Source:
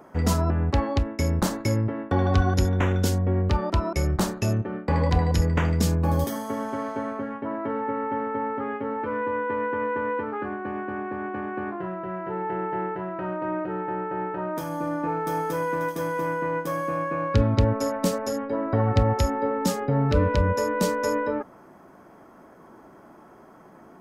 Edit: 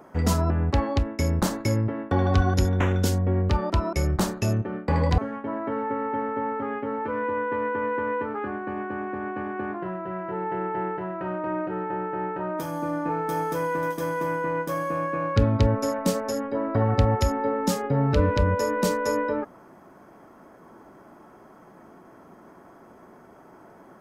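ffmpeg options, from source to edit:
ffmpeg -i in.wav -filter_complex "[0:a]asplit=2[link_01][link_02];[link_01]atrim=end=5.182[link_03];[link_02]atrim=start=7.158[link_04];[link_03][link_04]acrossfade=duration=0.004:curve1=hsin:curve2=hsin" out.wav

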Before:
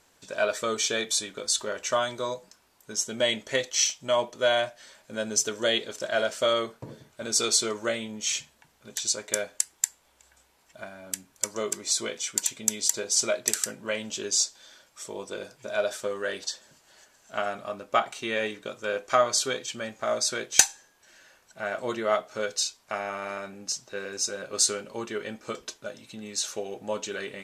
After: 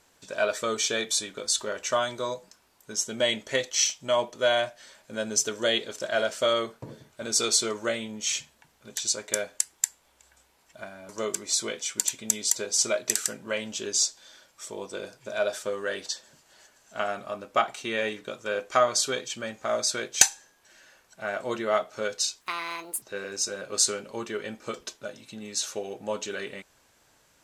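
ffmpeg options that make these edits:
ffmpeg -i in.wav -filter_complex "[0:a]asplit=4[link_01][link_02][link_03][link_04];[link_01]atrim=end=11.092[link_05];[link_02]atrim=start=11.468:end=22.794[link_06];[link_03]atrim=start=22.79:end=23.83,asetpts=PTS-STARTPTS,asetrate=74970,aresample=44100[link_07];[link_04]atrim=start=23.826[link_08];[link_05][link_06]acrossfade=duration=0.004:curve1=hsin:curve2=hsin[link_09];[link_09][link_07]acrossfade=duration=0.004:curve1=hsin:curve2=hsin[link_10];[link_10][link_08]acrossfade=duration=0.004:curve1=hsin:curve2=hsin" out.wav

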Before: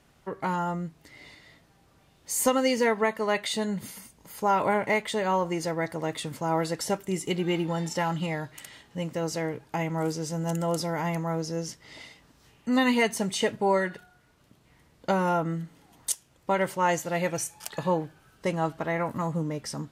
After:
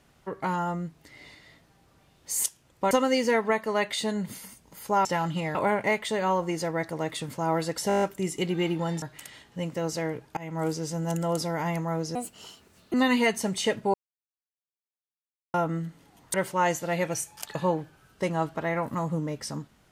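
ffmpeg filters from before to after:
ffmpeg -i in.wav -filter_complex "[0:a]asplit=19[link_01][link_02][link_03][link_04][link_05][link_06][link_07][link_08][link_09][link_10][link_11][link_12][link_13][link_14][link_15][link_16][link_17][link_18][link_19];[link_01]atrim=end=2.442[link_20];[link_02]atrim=start=16.098:end=16.572[link_21];[link_03]atrim=start=2.438:end=4.582[link_22];[link_04]atrim=start=7.908:end=8.412[link_23];[link_05]atrim=start=4.578:end=6.932[link_24];[link_06]atrim=start=6.908:end=6.932[link_25];[link_07]atrim=start=6.908:end=6.932[link_26];[link_08]atrim=start=6.908:end=6.932[link_27];[link_09]atrim=start=6.908:end=6.932[link_28];[link_10]atrim=start=6.908:end=6.932[link_29];[link_11]atrim=start=6.908:end=6.932[link_30];[link_12]atrim=start=6.908:end=7.912[link_31];[link_13]atrim=start=8.408:end=9.76,asetpts=PTS-STARTPTS,afade=type=out:start_time=1.348:duration=0.004:curve=hsin:silence=0.105925[link_32];[link_14]atrim=start=9.76:end=11.544,asetpts=PTS-STARTPTS,afade=type=in:duration=0.26:silence=0.105925[link_33];[link_15]atrim=start=11.54:end=12.7,asetpts=PTS-STARTPTS,asetrate=64827,aresample=44100[link_34];[link_16]atrim=start=12.696:end=13.7,asetpts=PTS-STARTPTS,afade=type=out:start_time=1:duration=0.004:curve=hsin[link_35];[link_17]atrim=start=13.7:end=15.3,asetpts=PTS-STARTPTS,volume=0[link_36];[link_18]atrim=start=15.3:end=16.102,asetpts=PTS-STARTPTS,afade=type=in:duration=0.004:curve=hsin[link_37];[link_19]atrim=start=16.568[link_38];[link_20][link_21]acrossfade=duration=0.004:curve1=hsin:curve2=hsin[link_39];[link_39][link_22]acrossfade=duration=0.004:curve1=hsin:curve2=hsin[link_40];[link_40][link_23]acrossfade=duration=0.004:curve1=hsin:curve2=hsin[link_41];[link_41][link_24]acrossfade=duration=0.004:curve1=hsin:curve2=hsin[link_42];[link_42][link_25]acrossfade=duration=0.004:curve1=hsin:curve2=hsin[link_43];[link_43][link_26]acrossfade=duration=0.004:curve1=hsin:curve2=hsin[link_44];[link_44][link_27]acrossfade=duration=0.004:curve1=hsin:curve2=hsin[link_45];[link_45][link_28]acrossfade=duration=0.004:curve1=hsin:curve2=hsin[link_46];[link_46][link_29]acrossfade=duration=0.004:curve1=hsin:curve2=hsin[link_47];[link_47][link_30]acrossfade=duration=0.004:curve1=hsin:curve2=hsin[link_48];[link_48][link_31]acrossfade=duration=0.004:curve1=hsin:curve2=hsin[link_49];[link_32][link_33]concat=n=2:v=0:a=1[link_50];[link_49][link_50]acrossfade=duration=0.004:curve1=hsin:curve2=hsin[link_51];[link_51][link_34]acrossfade=duration=0.004:curve1=hsin:curve2=hsin[link_52];[link_35][link_36][link_37]concat=n=3:v=0:a=1[link_53];[link_52][link_53]acrossfade=duration=0.004:curve1=hsin:curve2=hsin[link_54];[link_54][link_38]acrossfade=duration=0.004:curve1=hsin:curve2=hsin" out.wav

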